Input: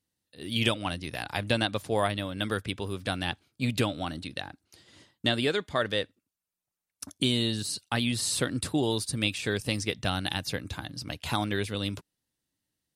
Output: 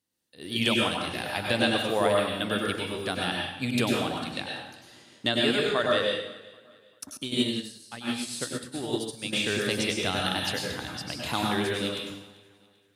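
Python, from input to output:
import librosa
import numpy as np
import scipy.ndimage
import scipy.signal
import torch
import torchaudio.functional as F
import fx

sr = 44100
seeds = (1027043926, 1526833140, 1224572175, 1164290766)

y = fx.highpass(x, sr, hz=180.0, slope=6)
y = fx.echo_feedback(y, sr, ms=392, feedback_pct=37, wet_db=-22.5)
y = fx.rev_plate(y, sr, seeds[0], rt60_s=0.76, hf_ratio=1.0, predelay_ms=85, drr_db=-1.5)
y = fx.upward_expand(y, sr, threshold_db=-32.0, expansion=2.5, at=(7.17, 9.33))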